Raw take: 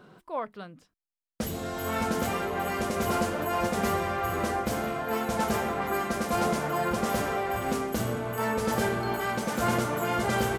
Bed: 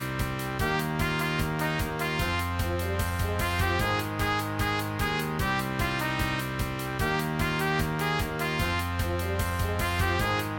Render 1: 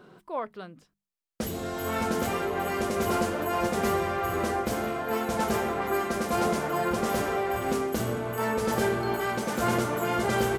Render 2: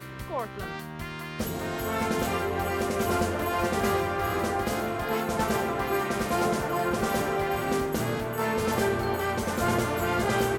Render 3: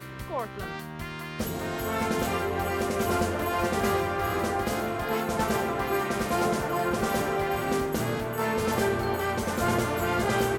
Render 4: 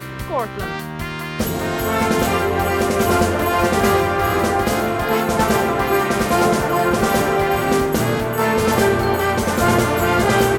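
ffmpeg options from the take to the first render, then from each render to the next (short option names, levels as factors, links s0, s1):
-af "equalizer=f=380:w=4.4:g=4.5,bandreject=f=50:t=h:w=6,bandreject=f=100:t=h:w=6,bandreject=f=150:t=h:w=6,bandreject=f=200:t=h:w=6"
-filter_complex "[1:a]volume=0.355[s0];[0:a][s0]amix=inputs=2:normalize=0"
-af anull
-af "volume=3.16"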